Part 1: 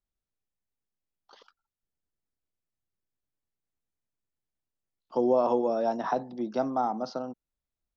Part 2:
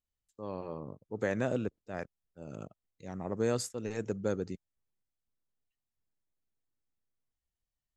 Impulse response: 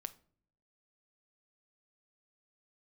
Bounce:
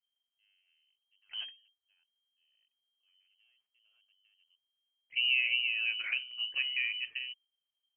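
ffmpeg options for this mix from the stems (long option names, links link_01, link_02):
-filter_complex "[0:a]highshelf=frequency=3300:gain=10.5,volume=-7dB,asplit=2[link_01][link_02];[1:a]alimiter=level_in=4.5dB:limit=-24dB:level=0:latency=1:release=235,volume=-4.5dB,aeval=exprs='(tanh(44.7*val(0)+0.6)-tanh(0.6))/44.7':channel_layout=same,volume=1.5dB[link_03];[link_02]apad=whole_len=351439[link_04];[link_03][link_04]sidechaingate=range=-34dB:threshold=-59dB:ratio=16:detection=peak[link_05];[link_01][link_05]amix=inputs=2:normalize=0,lowshelf=frequency=170:gain=9.5,lowpass=frequency=2700:width_type=q:width=0.5098,lowpass=frequency=2700:width_type=q:width=0.6013,lowpass=frequency=2700:width_type=q:width=0.9,lowpass=frequency=2700:width_type=q:width=2.563,afreqshift=-3200"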